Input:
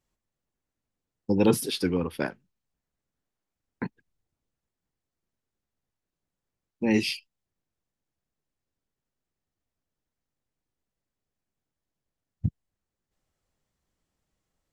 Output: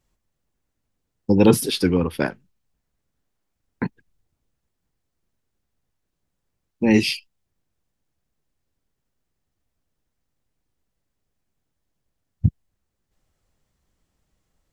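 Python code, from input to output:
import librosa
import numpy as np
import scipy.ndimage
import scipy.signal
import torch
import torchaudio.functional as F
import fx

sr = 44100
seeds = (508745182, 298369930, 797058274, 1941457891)

y = fx.low_shelf(x, sr, hz=110.0, db=6.0)
y = y * librosa.db_to_amplitude(6.0)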